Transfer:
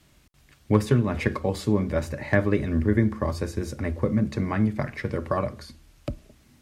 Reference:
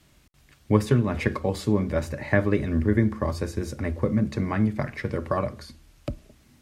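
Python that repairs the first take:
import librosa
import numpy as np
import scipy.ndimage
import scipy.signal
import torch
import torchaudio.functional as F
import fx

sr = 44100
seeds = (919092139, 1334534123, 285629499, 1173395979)

y = fx.fix_declip(x, sr, threshold_db=-7.5)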